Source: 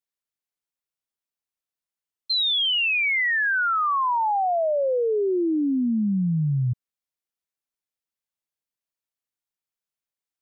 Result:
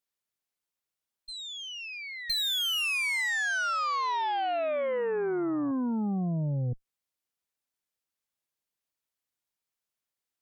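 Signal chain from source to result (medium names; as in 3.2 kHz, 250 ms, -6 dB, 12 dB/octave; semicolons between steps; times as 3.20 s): reverse echo 1017 ms -19.5 dB; compression 20:1, threshold -28 dBFS, peak gain reduction 7.5 dB; Chebyshev shaper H 5 -26 dB, 8 -17 dB, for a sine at -21 dBFS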